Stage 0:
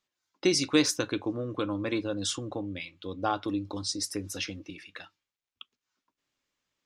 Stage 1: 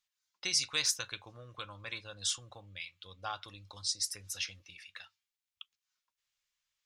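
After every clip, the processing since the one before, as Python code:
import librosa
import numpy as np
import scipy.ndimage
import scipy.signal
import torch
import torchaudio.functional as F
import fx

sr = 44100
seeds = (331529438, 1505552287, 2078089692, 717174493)

y = fx.tone_stack(x, sr, knobs='10-0-10')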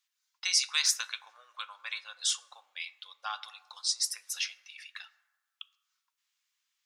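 y = scipy.signal.sosfilt(scipy.signal.butter(4, 880.0, 'highpass', fs=sr, output='sos'), x)
y = fx.rev_plate(y, sr, seeds[0], rt60_s=1.4, hf_ratio=0.35, predelay_ms=0, drr_db=16.0)
y = F.gain(torch.from_numpy(y), 4.0).numpy()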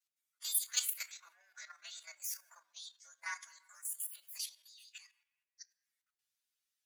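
y = fx.partial_stretch(x, sr, pct=122)
y = fx.level_steps(y, sr, step_db=10)
y = F.gain(torch.from_numpy(y), 1.0).numpy()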